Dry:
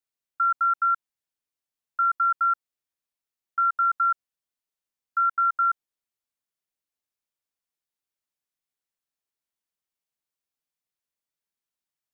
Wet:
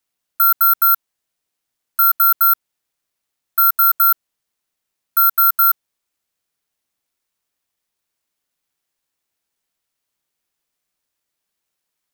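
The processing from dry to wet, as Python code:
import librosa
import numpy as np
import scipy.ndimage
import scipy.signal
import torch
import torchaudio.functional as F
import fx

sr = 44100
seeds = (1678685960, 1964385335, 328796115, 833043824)

p1 = np.clip(10.0 ** (28.5 / 20.0) * x, -1.0, 1.0) / 10.0 ** (28.5 / 20.0)
p2 = x + F.gain(torch.from_numpy(p1), -4.0).numpy()
p3 = (np.kron(p2[::3], np.eye(3)[0]) * 3)[:len(p2)]
y = F.gain(torch.from_numpy(p3), 2.5).numpy()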